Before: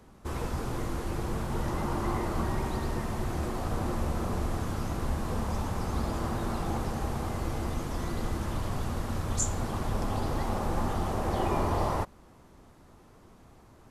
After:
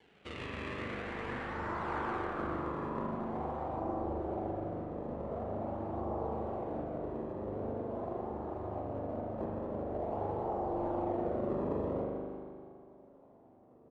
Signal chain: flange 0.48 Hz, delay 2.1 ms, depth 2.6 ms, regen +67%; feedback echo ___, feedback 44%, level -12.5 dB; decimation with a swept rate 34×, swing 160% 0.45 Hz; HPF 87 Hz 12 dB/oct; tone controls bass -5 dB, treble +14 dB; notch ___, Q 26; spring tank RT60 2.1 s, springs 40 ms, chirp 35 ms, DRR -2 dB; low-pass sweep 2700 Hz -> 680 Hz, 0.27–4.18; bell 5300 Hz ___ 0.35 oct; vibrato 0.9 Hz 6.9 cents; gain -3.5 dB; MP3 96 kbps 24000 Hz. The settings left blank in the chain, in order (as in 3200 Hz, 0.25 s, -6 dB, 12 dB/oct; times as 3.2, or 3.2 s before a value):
0.163 s, 6500 Hz, -5 dB